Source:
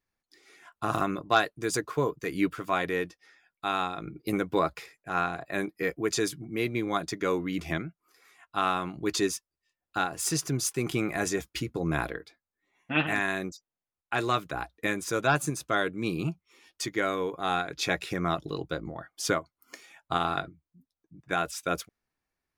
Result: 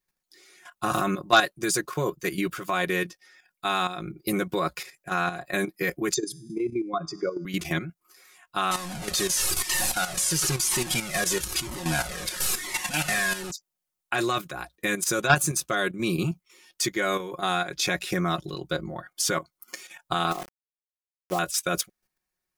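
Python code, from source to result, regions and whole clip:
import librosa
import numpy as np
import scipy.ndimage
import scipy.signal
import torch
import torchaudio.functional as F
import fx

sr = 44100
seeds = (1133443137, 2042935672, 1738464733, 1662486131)

y = fx.chain(x, sr, fx.spec_expand(power=2.4),
    fx.comb_fb(f0_hz=81.0, decay_s=0.83, harmonics='all', damping=0.0, mix_pct=40),
    fx.band_squash(depth_pct=40), at=(6.14, 7.45))
y = fx.chain(y, sr, fx.delta_mod(bps=64000, step_db=-25.0),
    fx.comb_cascade(direction='falling', hz=1.0), at=(8.71, 13.51))
y = fx.chain(y, sr, fx.brickwall_bandpass(low_hz=160.0, high_hz=1300.0),
    fx.sample_gate(floor_db=-39.0), at=(20.31, 21.39))
y = fx.high_shelf(y, sr, hz=4600.0, db=10.0)
y = y + 0.65 * np.pad(y, (int(5.5 * sr / 1000.0), 0))[:len(y)]
y = fx.level_steps(y, sr, step_db=10)
y = F.gain(torch.from_numpy(y), 5.0).numpy()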